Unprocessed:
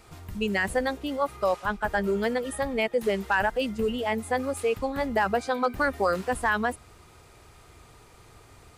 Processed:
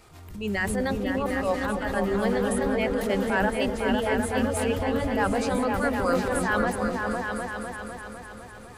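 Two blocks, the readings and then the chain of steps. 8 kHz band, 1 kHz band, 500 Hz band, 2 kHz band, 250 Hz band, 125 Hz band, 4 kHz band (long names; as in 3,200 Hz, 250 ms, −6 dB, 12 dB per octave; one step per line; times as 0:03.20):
+4.5 dB, 0.0 dB, +1.0 dB, 0.0 dB, +5.0 dB, +6.5 dB, +0.5 dB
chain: transient designer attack −10 dB, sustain +5 dB
echo whose low-pass opens from repeat to repeat 252 ms, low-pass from 400 Hz, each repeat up 2 octaves, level 0 dB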